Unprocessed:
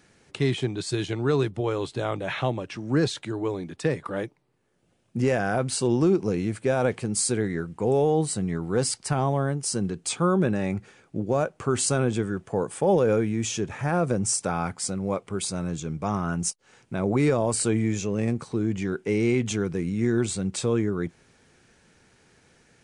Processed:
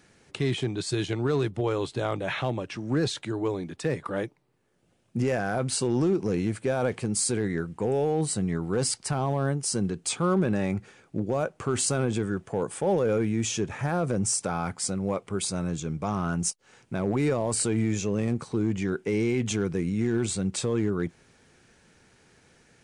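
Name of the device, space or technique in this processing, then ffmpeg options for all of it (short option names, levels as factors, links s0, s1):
limiter into clipper: -af "alimiter=limit=0.15:level=0:latency=1:release=26,asoftclip=type=hard:threshold=0.133"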